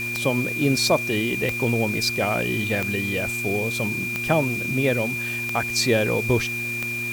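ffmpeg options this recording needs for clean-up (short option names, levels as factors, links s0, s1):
-af "adeclick=t=4,bandreject=f=118.3:t=h:w=4,bandreject=f=236.6:t=h:w=4,bandreject=f=354.9:t=h:w=4,bandreject=f=2400:w=30,afwtdn=0.01"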